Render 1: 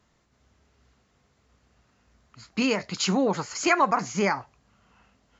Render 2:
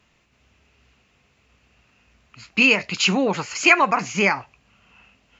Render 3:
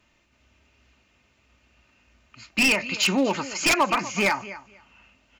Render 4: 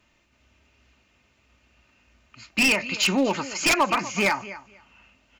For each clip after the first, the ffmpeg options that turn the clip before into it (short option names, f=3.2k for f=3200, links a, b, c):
-af "equalizer=f=2.6k:w=2.7:g=14,volume=2.5dB"
-af "aecho=1:1:3.3:0.41,aecho=1:1:245|490:0.141|0.0226,aeval=exprs='0.282*(abs(mod(val(0)/0.282+3,4)-2)-1)':c=same,volume=-2.5dB"
-af "aeval=exprs='0.224*(cos(1*acos(clip(val(0)/0.224,-1,1)))-cos(1*PI/2))+0.00562*(cos(2*acos(clip(val(0)/0.224,-1,1)))-cos(2*PI/2))':c=same"